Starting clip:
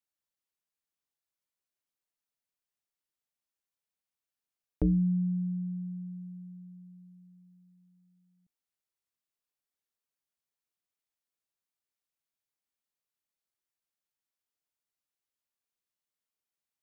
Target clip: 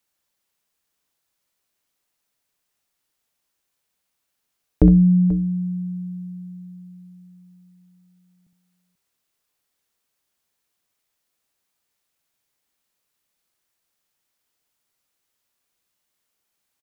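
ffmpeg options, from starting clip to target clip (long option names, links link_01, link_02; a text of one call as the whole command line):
ffmpeg -i in.wav -af "acontrast=39,aecho=1:1:63|487:0.422|0.158,volume=8.5dB" out.wav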